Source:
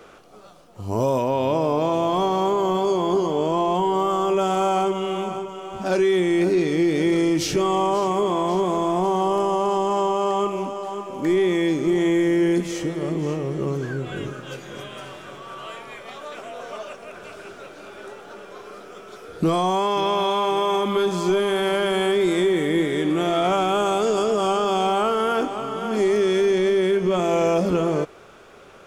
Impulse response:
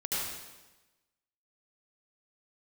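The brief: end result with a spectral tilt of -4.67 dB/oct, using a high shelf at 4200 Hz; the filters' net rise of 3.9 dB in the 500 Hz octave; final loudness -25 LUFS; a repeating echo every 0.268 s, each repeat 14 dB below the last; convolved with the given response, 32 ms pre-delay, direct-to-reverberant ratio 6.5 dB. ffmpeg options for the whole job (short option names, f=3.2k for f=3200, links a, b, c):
-filter_complex "[0:a]equalizer=f=500:t=o:g=5.5,highshelf=f=4.2k:g=3,aecho=1:1:268|536:0.2|0.0399,asplit=2[a][b];[1:a]atrim=start_sample=2205,adelay=32[c];[b][c]afir=irnorm=-1:irlink=0,volume=-13dB[d];[a][d]amix=inputs=2:normalize=0,volume=-7.5dB"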